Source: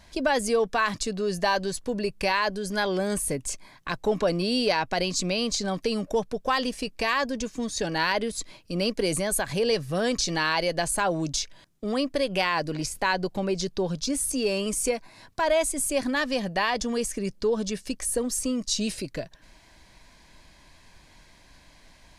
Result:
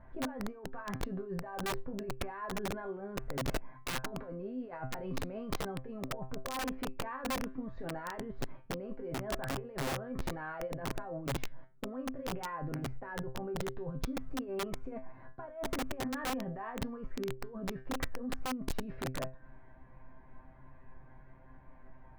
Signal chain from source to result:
low-pass filter 1,500 Hz 24 dB per octave
compressor whose output falls as the input rises −33 dBFS, ratio −1
low-shelf EQ 220 Hz +5 dB
tuned comb filter 130 Hz, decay 0.29 s, harmonics all, mix 90%
wrap-around overflow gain 32 dB
level +2.5 dB

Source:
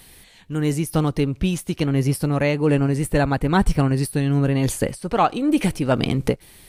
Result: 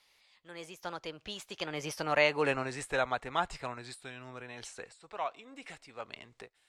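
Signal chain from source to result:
source passing by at 0:02.33, 39 m/s, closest 18 metres
three-way crossover with the lows and the highs turned down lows −22 dB, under 570 Hz, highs −24 dB, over 7,700 Hz

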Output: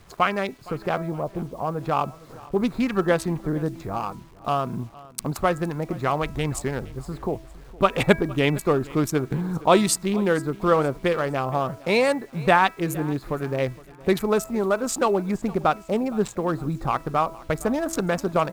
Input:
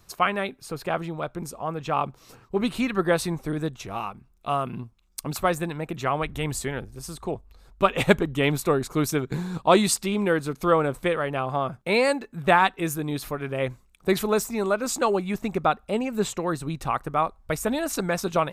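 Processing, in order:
adaptive Wiener filter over 15 samples
0:01.12–0:01.58: Chebyshev low-pass filter 1,100 Hz, order 5
hum removal 326.9 Hz, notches 8
in parallel at +2 dB: downward compressor 12 to 1, threshold −34 dBFS, peak gain reduction 23 dB
on the sum: bit reduction 9 bits
on a send: repeating echo 463 ms, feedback 40%, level −21 dB

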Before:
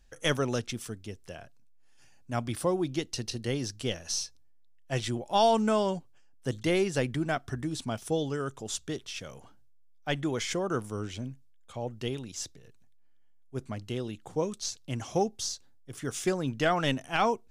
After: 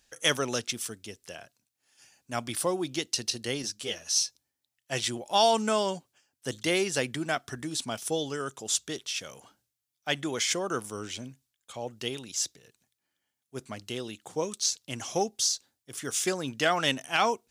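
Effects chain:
high-pass filter 260 Hz 6 dB per octave
high-shelf EQ 2,400 Hz +9 dB
0:03.62–0:04.16: string-ensemble chorus

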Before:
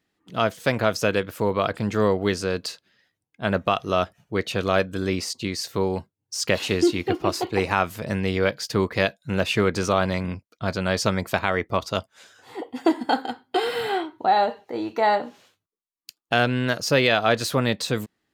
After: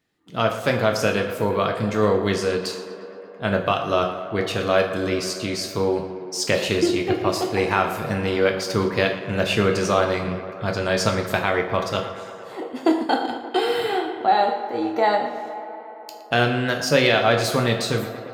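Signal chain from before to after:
tape delay 116 ms, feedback 88%, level −12 dB, low-pass 3,500 Hz
on a send at −4 dB: convolution reverb RT60 0.55 s, pre-delay 4 ms

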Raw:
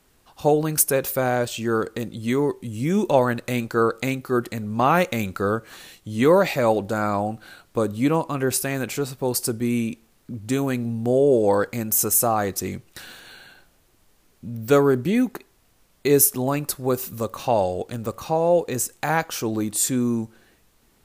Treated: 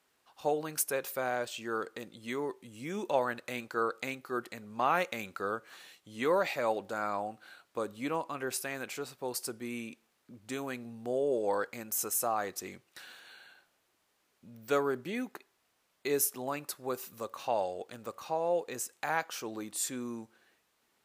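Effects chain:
high-pass filter 800 Hz 6 dB per octave
high-shelf EQ 5,100 Hz −7.5 dB
level −6.5 dB

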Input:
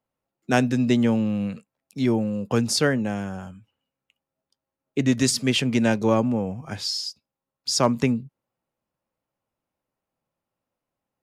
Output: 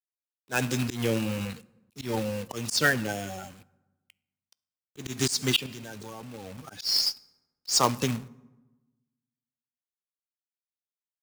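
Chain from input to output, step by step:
spectral magnitudes quantised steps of 30 dB
tilt shelving filter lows −6.5 dB, about 1,300 Hz
0:05.66–0:06.58: output level in coarse steps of 21 dB
log-companded quantiser 4 bits
on a send at −18.5 dB: convolution reverb RT60 1.1 s, pre-delay 3 ms
on the sum: volume swells 155 ms

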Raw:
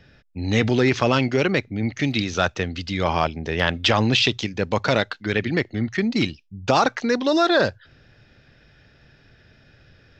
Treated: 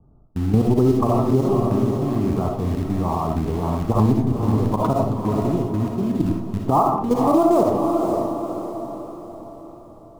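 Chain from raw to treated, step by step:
Butterworth low-pass 1,200 Hz 96 dB per octave
in parallel at −11.5 dB: bit reduction 5 bits
on the sum: low-shelf EQ 290 Hz +2 dB
output level in coarse steps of 16 dB
parametric band 540 Hz −11.5 dB 0.42 octaves
feedback delay with all-pass diffusion 521 ms, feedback 47%, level −10.5 dB
on a send at −2 dB: convolution reverb RT60 0.45 s, pre-delay 20 ms
on the sum: downward compressor 3 to 1, threshold −23 dBFS, peak gain reduction 7.5 dB
boost into a limiter +16.5 dB
level −6.5 dB

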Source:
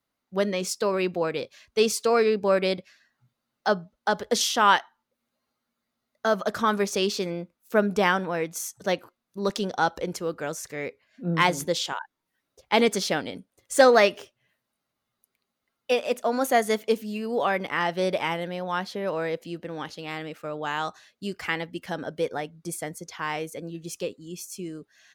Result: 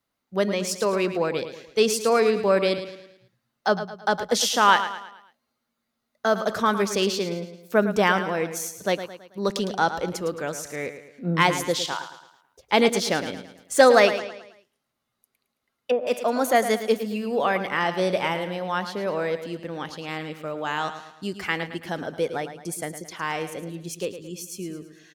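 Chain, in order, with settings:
repeating echo 109 ms, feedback 44%, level −11 dB
0:14.18–0:16.07: treble cut that deepens with the level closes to 740 Hz, closed at −21 dBFS
level +1.5 dB

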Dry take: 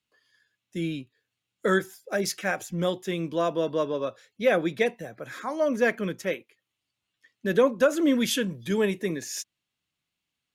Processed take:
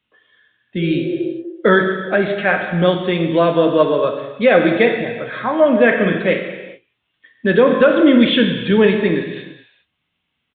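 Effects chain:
downsampling to 8,000 Hz
0:00.83–0:01.28: healed spectral selection 340–1,200 Hz before
0:05.92–0:06.34: double-tracking delay 47 ms −6 dB
reverb whose tail is shaped and stops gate 450 ms falling, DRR 3.5 dB
boost into a limiter +12 dB
level −1 dB

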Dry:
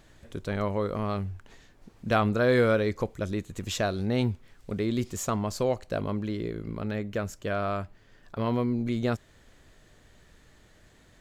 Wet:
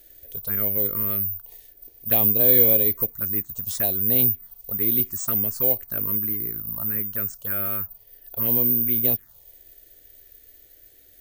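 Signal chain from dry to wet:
phaser swept by the level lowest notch 170 Hz, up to 1,400 Hz, full sweep at −22.5 dBFS
bad sample-rate conversion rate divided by 3×, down filtered, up zero stuff
bass and treble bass −3 dB, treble +5 dB
level −1 dB

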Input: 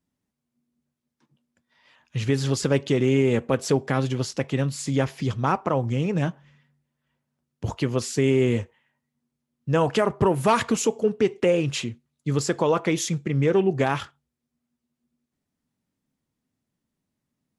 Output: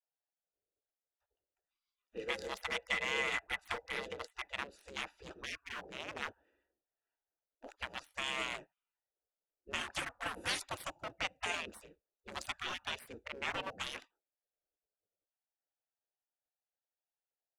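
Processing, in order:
adaptive Wiener filter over 41 samples
gate on every frequency bin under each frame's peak −25 dB weak
0:02.18–0:04.52: hollow resonant body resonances 470/2,000 Hz, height 14 dB, ringing for 45 ms
level +1.5 dB

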